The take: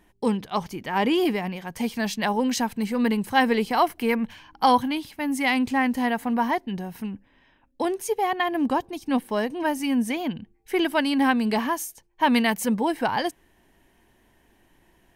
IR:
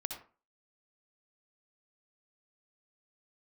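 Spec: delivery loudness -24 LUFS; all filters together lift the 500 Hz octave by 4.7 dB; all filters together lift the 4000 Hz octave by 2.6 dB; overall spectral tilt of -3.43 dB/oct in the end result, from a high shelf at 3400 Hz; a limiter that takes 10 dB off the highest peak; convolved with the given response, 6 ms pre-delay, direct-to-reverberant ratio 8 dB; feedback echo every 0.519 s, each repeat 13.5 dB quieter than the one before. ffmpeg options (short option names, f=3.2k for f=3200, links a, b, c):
-filter_complex "[0:a]equalizer=f=500:t=o:g=6,highshelf=f=3.4k:g=-7,equalizer=f=4k:t=o:g=8.5,alimiter=limit=-15dB:level=0:latency=1,aecho=1:1:519|1038:0.211|0.0444,asplit=2[a][b];[1:a]atrim=start_sample=2205,adelay=6[c];[b][c]afir=irnorm=-1:irlink=0,volume=-8dB[d];[a][d]amix=inputs=2:normalize=0,volume=1dB"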